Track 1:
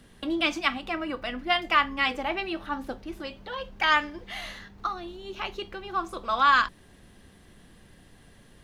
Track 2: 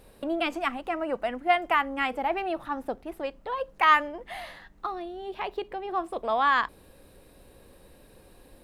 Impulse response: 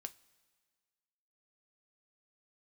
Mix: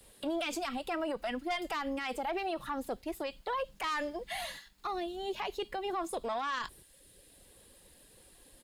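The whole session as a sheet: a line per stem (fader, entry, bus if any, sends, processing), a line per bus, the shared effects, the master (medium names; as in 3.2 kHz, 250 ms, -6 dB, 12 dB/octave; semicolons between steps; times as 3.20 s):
-1.0 dB, 0.00 s, no send, differentiator; band-stop 5.9 kHz, Q 6
+2.0 dB, 7.3 ms, no send, gate -46 dBFS, range -8 dB; reverb removal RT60 0.81 s; valve stage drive 18 dB, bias 0.35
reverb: none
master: peaking EQ 7.6 kHz +5.5 dB 2.6 oct; peak limiter -27 dBFS, peak gain reduction 15.5 dB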